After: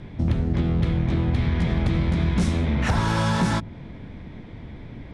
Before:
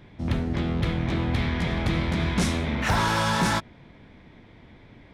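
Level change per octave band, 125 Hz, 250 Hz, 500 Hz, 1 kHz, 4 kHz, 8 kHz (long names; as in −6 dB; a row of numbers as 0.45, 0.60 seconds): +5.0, +3.0, +0.5, −2.0, −3.5, −4.0 decibels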